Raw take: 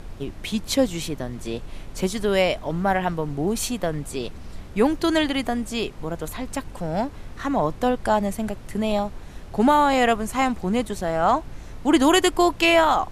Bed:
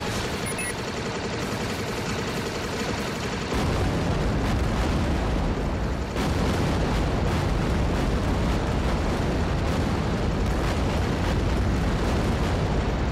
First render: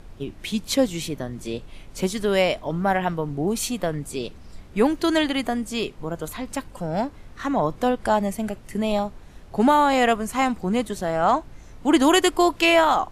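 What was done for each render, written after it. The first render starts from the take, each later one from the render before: noise print and reduce 6 dB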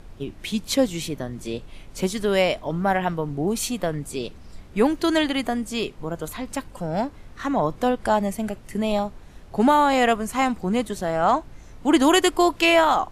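no audible change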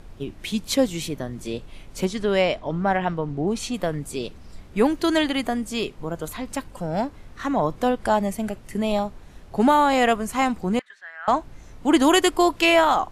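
2.05–3.74 s: distance through air 67 m; 10.79–11.28 s: ladder band-pass 1.8 kHz, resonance 75%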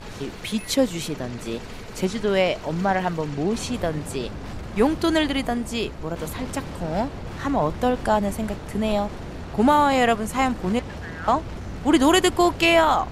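add bed -10.5 dB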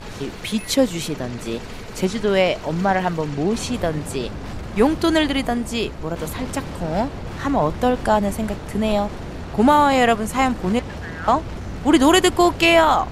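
trim +3 dB

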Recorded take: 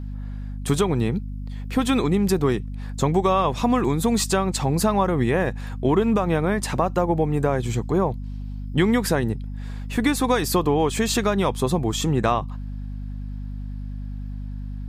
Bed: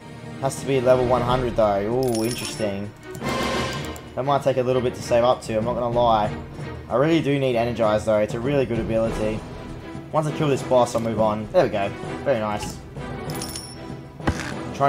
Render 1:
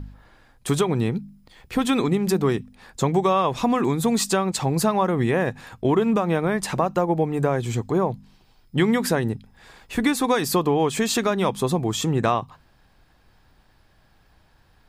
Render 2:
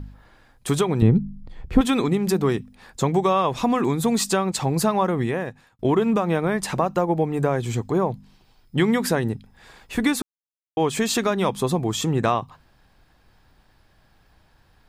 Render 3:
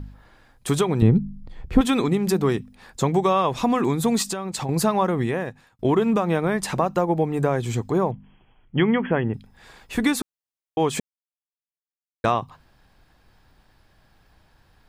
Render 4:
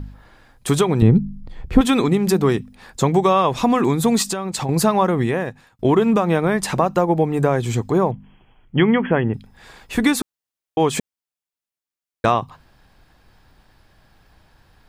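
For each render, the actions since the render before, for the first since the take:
de-hum 50 Hz, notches 5
1.02–1.81 s: tilt EQ -3.5 dB/octave; 5.08–5.79 s: fade out; 10.22–10.77 s: mute
4.22–4.69 s: compression, threshold -24 dBFS; 8.11–9.34 s: brick-wall FIR low-pass 3.4 kHz; 11.00–12.24 s: mute
trim +4 dB; peak limiter -2 dBFS, peak gain reduction 1 dB

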